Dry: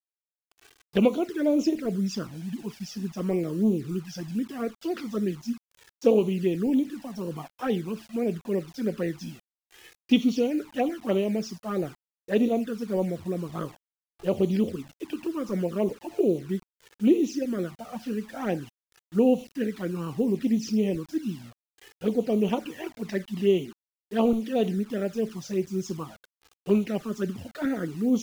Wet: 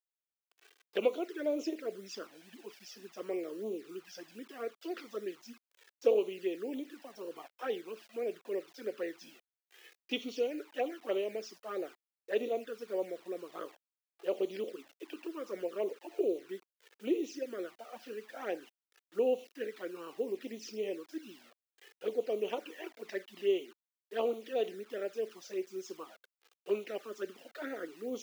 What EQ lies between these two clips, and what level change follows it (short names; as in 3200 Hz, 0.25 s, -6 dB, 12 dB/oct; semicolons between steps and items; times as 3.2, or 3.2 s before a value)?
HPF 400 Hz 24 dB/oct; bell 900 Hz -6.5 dB 1.1 oct; bell 9000 Hz -7.5 dB 2.1 oct; -3.0 dB